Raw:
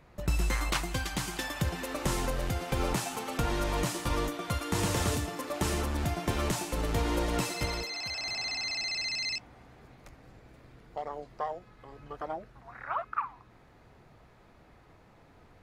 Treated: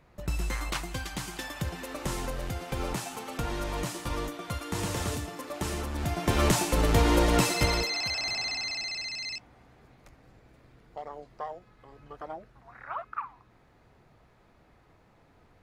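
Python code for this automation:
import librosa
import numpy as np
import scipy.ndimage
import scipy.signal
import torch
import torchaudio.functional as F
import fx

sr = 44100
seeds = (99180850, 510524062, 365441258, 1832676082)

y = fx.gain(x, sr, db=fx.line((5.91, -2.5), (6.44, 7.0), (7.85, 7.0), (9.12, -3.0)))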